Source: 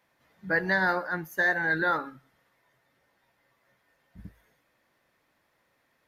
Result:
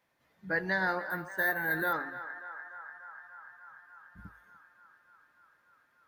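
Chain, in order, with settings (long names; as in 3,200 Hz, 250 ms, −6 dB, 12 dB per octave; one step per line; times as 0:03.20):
0:01.10–0:01.93: bad sample-rate conversion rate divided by 3×, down filtered, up hold
feedback echo with a band-pass in the loop 293 ms, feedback 82%, band-pass 1,200 Hz, level −11.5 dB
level −5 dB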